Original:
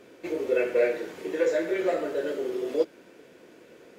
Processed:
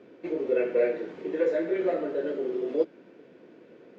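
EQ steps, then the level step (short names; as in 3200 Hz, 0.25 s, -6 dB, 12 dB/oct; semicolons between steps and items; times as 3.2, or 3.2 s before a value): HPF 160 Hz 12 dB/oct; air absorption 180 m; low shelf 380 Hz +10 dB; -4.0 dB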